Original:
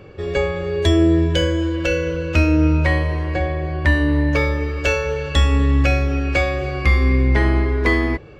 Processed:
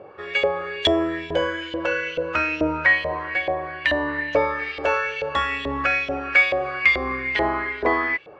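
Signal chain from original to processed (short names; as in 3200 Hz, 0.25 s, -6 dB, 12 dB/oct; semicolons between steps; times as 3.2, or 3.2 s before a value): 4.58–4.98 buzz 400 Hz, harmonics 13, -41 dBFS -4 dB/oct; LFO band-pass saw up 2.3 Hz 610–3300 Hz; gain +8.5 dB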